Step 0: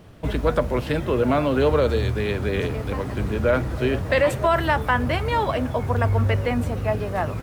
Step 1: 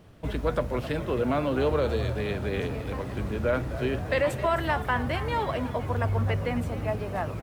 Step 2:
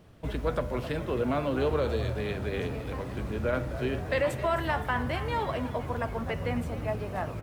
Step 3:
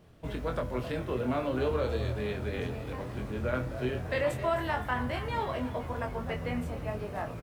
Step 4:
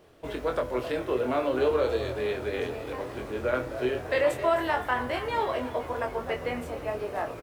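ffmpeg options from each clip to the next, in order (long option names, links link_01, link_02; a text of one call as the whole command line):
ffmpeg -i in.wav -filter_complex "[0:a]asplit=7[link_01][link_02][link_03][link_04][link_05][link_06][link_07];[link_02]adelay=262,afreqshift=66,volume=-14dB[link_08];[link_03]adelay=524,afreqshift=132,volume=-19.2dB[link_09];[link_04]adelay=786,afreqshift=198,volume=-24.4dB[link_10];[link_05]adelay=1048,afreqshift=264,volume=-29.6dB[link_11];[link_06]adelay=1310,afreqshift=330,volume=-34.8dB[link_12];[link_07]adelay=1572,afreqshift=396,volume=-40dB[link_13];[link_01][link_08][link_09][link_10][link_11][link_12][link_13]amix=inputs=7:normalize=0,volume=-6dB" out.wav
ffmpeg -i in.wav -af "bandreject=frequency=99.89:width_type=h:width=4,bandreject=frequency=199.78:width_type=h:width=4,bandreject=frequency=299.67:width_type=h:width=4,bandreject=frequency=399.56:width_type=h:width=4,bandreject=frequency=499.45:width_type=h:width=4,bandreject=frequency=599.34:width_type=h:width=4,bandreject=frequency=699.23:width_type=h:width=4,bandreject=frequency=799.12:width_type=h:width=4,bandreject=frequency=899.01:width_type=h:width=4,bandreject=frequency=998.9:width_type=h:width=4,bandreject=frequency=1098.79:width_type=h:width=4,bandreject=frequency=1198.68:width_type=h:width=4,bandreject=frequency=1298.57:width_type=h:width=4,bandreject=frequency=1398.46:width_type=h:width=4,bandreject=frequency=1498.35:width_type=h:width=4,bandreject=frequency=1598.24:width_type=h:width=4,bandreject=frequency=1698.13:width_type=h:width=4,bandreject=frequency=1798.02:width_type=h:width=4,bandreject=frequency=1897.91:width_type=h:width=4,bandreject=frequency=1997.8:width_type=h:width=4,bandreject=frequency=2097.69:width_type=h:width=4,bandreject=frequency=2197.58:width_type=h:width=4,bandreject=frequency=2297.47:width_type=h:width=4,bandreject=frequency=2397.36:width_type=h:width=4,bandreject=frequency=2497.25:width_type=h:width=4,bandreject=frequency=2597.14:width_type=h:width=4,bandreject=frequency=2697.03:width_type=h:width=4,bandreject=frequency=2796.92:width_type=h:width=4,bandreject=frequency=2896.81:width_type=h:width=4,bandreject=frequency=2996.7:width_type=h:width=4,bandreject=frequency=3096.59:width_type=h:width=4,bandreject=frequency=3196.48:width_type=h:width=4,bandreject=frequency=3296.37:width_type=h:width=4,volume=-2dB" out.wav
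ffmpeg -i in.wav -filter_complex "[0:a]asplit=2[link_01][link_02];[link_02]adelay=24,volume=-5dB[link_03];[link_01][link_03]amix=inputs=2:normalize=0,volume=-3.5dB" out.wav
ffmpeg -i in.wav -af "lowshelf=frequency=260:width_type=q:width=1.5:gain=-9,volume=4dB" out.wav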